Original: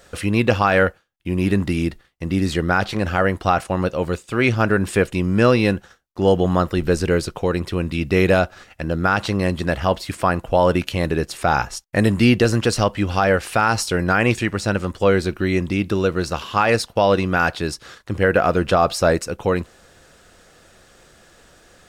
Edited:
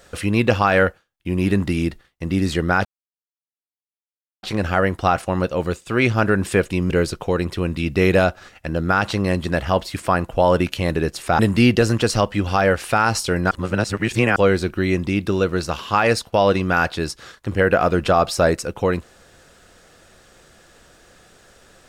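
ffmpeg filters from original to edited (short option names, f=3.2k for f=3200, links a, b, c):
-filter_complex "[0:a]asplit=6[a][b][c][d][e][f];[a]atrim=end=2.85,asetpts=PTS-STARTPTS,afade=t=out:st=2.846:d=0.004:c=hsin,apad=pad_dur=1.58[g];[b]atrim=start=2.85:end=5.322,asetpts=PTS-STARTPTS,afade=t=in:d=0.004:c=hsin[h];[c]atrim=start=7.048:end=11.542[i];[d]atrim=start=12.018:end=14.142[j];[e]atrim=start=14.138:end=14.992,asetpts=PTS-STARTPTS,areverse[k];[f]atrim=start=14.988[l];[g][h]concat=n=2:v=0:a=1[m];[m][i]acrossfade=d=0.004:c1=hsin:c2=hsin[n];[n][j]acrossfade=d=0.004:c1=hsin:c2=hsin[o];[o][k]acrossfade=d=0.004:c1=hsin:c2=hsin[p];[p][l]acrossfade=d=0.004:c1=hsin:c2=hsin"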